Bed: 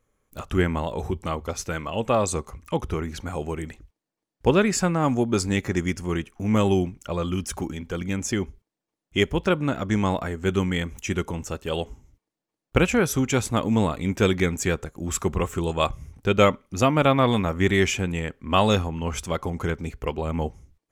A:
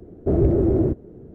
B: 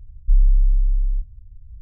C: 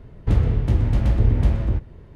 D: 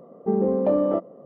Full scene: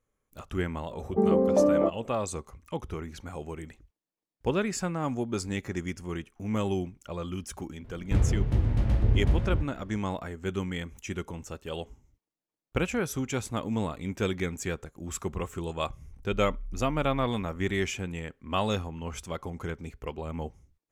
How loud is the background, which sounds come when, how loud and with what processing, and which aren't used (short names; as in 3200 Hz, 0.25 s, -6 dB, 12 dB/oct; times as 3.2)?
bed -8.5 dB
0.9 add D -1 dB
7.84 add C -6 dB
16.04 add B -10.5 dB + compressor, threshold -25 dBFS
not used: A